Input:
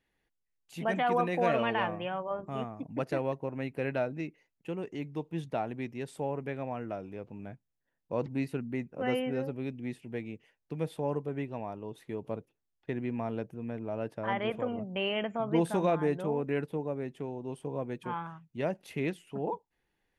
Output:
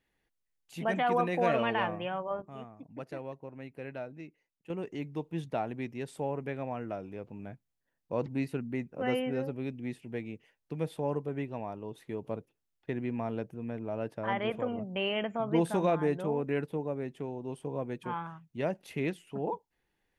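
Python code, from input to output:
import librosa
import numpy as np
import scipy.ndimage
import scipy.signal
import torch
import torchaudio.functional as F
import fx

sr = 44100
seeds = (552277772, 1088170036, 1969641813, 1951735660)

y = fx.edit(x, sr, fx.clip_gain(start_s=2.42, length_s=2.28, db=-9.0), tone=tone)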